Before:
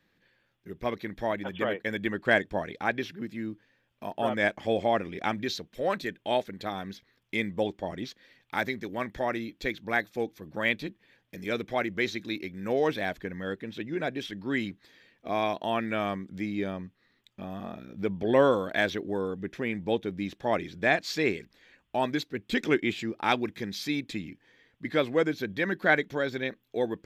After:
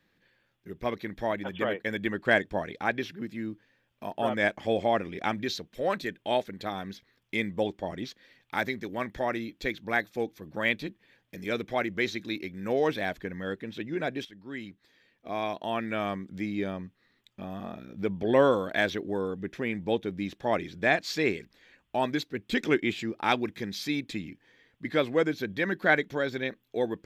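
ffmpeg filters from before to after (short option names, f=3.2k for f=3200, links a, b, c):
-filter_complex "[0:a]asplit=2[a][b];[a]atrim=end=14.25,asetpts=PTS-STARTPTS,afade=t=out:st=14.246:d=0.004:c=hsin:silence=0.223872[c];[b]atrim=start=14.25,asetpts=PTS-STARTPTS,afade=t=in:d=2.06:silence=0.223872[d];[c][d]concat=n=2:v=0:a=1"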